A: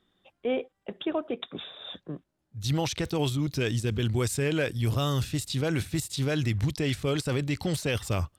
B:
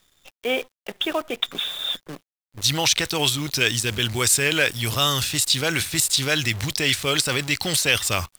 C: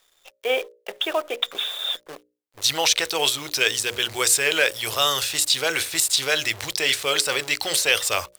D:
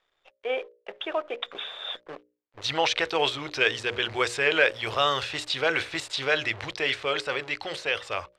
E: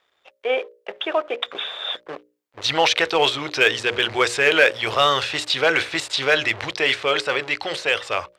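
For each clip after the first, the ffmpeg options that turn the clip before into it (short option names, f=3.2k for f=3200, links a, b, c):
-af "tiltshelf=f=850:g=-9,acrusher=bits=8:dc=4:mix=0:aa=0.000001,volume=7dB"
-af "lowshelf=f=320:t=q:w=1.5:g=-12,bandreject=f=60:t=h:w=6,bandreject=f=120:t=h:w=6,bandreject=f=180:t=h:w=6,bandreject=f=240:t=h:w=6,bandreject=f=300:t=h:w=6,bandreject=f=360:t=h:w=6,bandreject=f=420:t=h:w=6,bandreject=f=480:t=h:w=6,bandreject=f=540:t=h:w=6,bandreject=f=600:t=h:w=6"
-af "lowpass=2.5k,dynaudnorm=f=340:g=11:m=11.5dB,volume=-5.5dB"
-filter_complex "[0:a]highpass=f=130:p=1,asplit=2[a][b];[b]asoftclip=type=hard:threshold=-18.5dB,volume=-3dB[c];[a][c]amix=inputs=2:normalize=0,volume=2.5dB"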